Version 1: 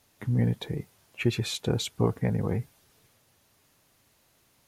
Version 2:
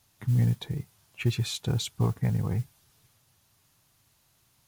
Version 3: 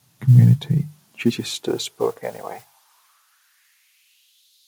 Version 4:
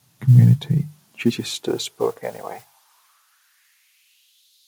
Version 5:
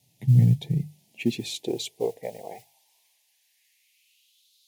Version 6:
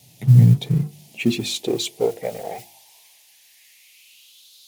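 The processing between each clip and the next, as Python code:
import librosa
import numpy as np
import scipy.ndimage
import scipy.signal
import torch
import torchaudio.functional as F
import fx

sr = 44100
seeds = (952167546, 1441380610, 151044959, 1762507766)

y1 = fx.graphic_eq(x, sr, hz=(125, 250, 500, 2000), db=(4, -5, -8, -4))
y1 = fx.mod_noise(y1, sr, seeds[0], snr_db=29)
y2 = fx.vibrato(y1, sr, rate_hz=14.0, depth_cents=42.0)
y2 = fx.hum_notches(y2, sr, base_hz=50, count=3)
y2 = fx.filter_sweep_highpass(y2, sr, from_hz=140.0, to_hz=3800.0, start_s=0.66, end_s=4.52, q=4.0)
y2 = y2 * 10.0 ** (5.5 / 20.0)
y3 = y2
y4 = scipy.signal.sosfilt(scipy.signal.cheby1(2, 1.0, [730.0, 2300.0], 'bandstop', fs=sr, output='sos'), y3)
y4 = y4 * 10.0 ** (-5.0 / 20.0)
y5 = fx.law_mismatch(y4, sr, coded='mu')
y5 = fx.hum_notches(y5, sr, base_hz=50, count=7)
y5 = y5 * 10.0 ** (6.0 / 20.0)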